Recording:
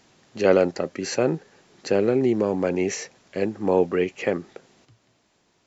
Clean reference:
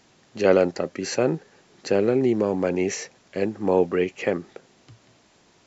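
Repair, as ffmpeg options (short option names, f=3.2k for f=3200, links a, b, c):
-af "asetnsamples=n=441:p=0,asendcmd='4.85 volume volume 7.5dB',volume=0dB"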